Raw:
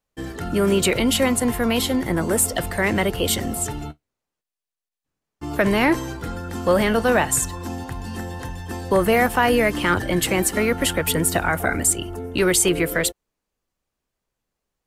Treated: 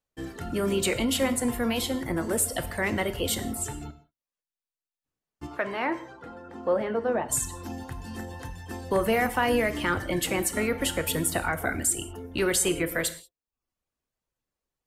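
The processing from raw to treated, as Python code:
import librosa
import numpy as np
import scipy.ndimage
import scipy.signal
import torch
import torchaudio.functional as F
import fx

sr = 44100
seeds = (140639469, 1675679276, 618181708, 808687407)

y = fx.dereverb_blind(x, sr, rt60_s=0.51)
y = fx.bandpass_q(y, sr, hz=fx.line((5.46, 1300.0), (7.28, 380.0)), q=0.72, at=(5.46, 7.28), fade=0.02)
y = fx.rev_gated(y, sr, seeds[0], gate_ms=210, shape='falling', drr_db=9.5)
y = y * 10.0 ** (-6.5 / 20.0)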